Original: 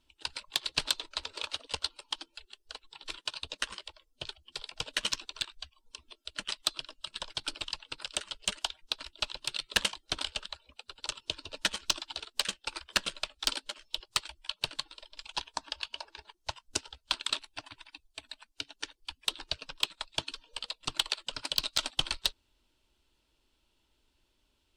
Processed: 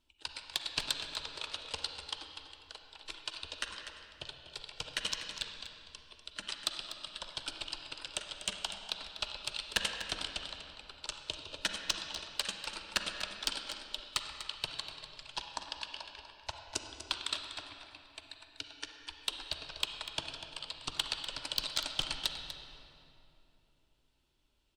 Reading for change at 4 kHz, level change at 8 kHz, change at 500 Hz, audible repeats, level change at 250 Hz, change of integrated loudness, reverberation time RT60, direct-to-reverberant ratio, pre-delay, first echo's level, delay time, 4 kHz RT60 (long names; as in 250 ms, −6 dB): −3.5 dB, −4.0 dB, −2.5 dB, 1, −2.5 dB, −3.5 dB, 2.9 s, 4.0 dB, 36 ms, −11.5 dB, 245 ms, 1.9 s